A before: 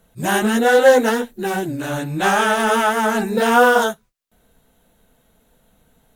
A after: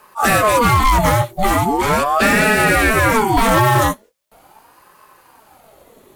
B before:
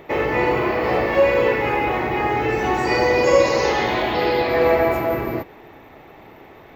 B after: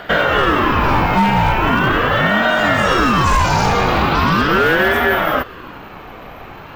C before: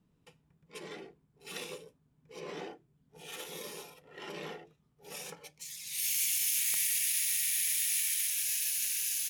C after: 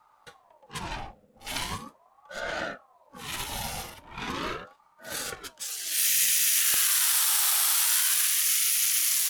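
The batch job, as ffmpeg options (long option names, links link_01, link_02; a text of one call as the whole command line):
ffmpeg -i in.wav -filter_complex "[0:a]acontrast=85,volume=7dB,asoftclip=hard,volume=-7dB,acrossover=split=1100|7600[link_01][link_02][link_03];[link_01]acompressor=threshold=-15dB:ratio=4[link_04];[link_02]acompressor=threshold=-25dB:ratio=4[link_05];[link_03]acompressor=threshold=-26dB:ratio=4[link_06];[link_04][link_05][link_06]amix=inputs=3:normalize=0,aeval=exprs='val(0)*sin(2*PI*710*n/s+710*0.5/0.4*sin(2*PI*0.4*n/s))':channel_layout=same,volume=5.5dB" out.wav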